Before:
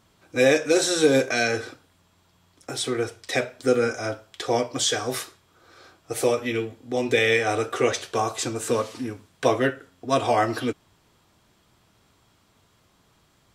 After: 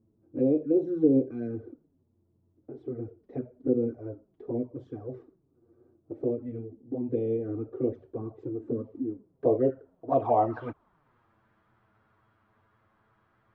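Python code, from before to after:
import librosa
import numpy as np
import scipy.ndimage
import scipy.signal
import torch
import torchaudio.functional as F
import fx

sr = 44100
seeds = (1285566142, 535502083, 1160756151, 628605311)

y = fx.env_flanger(x, sr, rest_ms=9.4, full_db=-16.5)
y = fx.filter_sweep_lowpass(y, sr, from_hz=320.0, to_hz=1500.0, start_s=8.93, end_s=11.18, q=2.0)
y = F.gain(torch.from_numpy(y), -4.0).numpy()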